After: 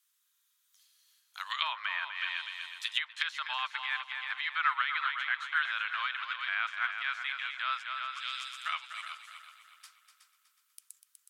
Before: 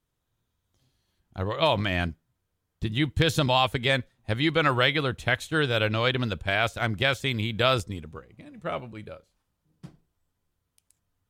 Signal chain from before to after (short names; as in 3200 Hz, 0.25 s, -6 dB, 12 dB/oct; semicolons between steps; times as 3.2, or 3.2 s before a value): steep high-pass 1100 Hz 36 dB/oct; tilt +4 dB/oct; multi-head echo 0.123 s, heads second and third, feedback 43%, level -10 dB; limiter -10.5 dBFS, peak gain reduction 8.5 dB; treble ducked by the level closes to 1400 Hz, closed at -24.5 dBFS